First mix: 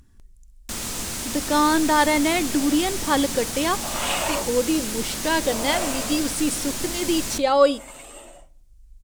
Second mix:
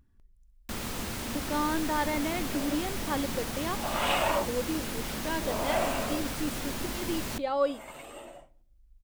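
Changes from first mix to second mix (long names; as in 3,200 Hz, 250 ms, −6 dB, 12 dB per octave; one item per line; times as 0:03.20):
speech −10.5 dB
first sound: send −10.0 dB
master: add parametric band 7,700 Hz −11.5 dB 1.7 octaves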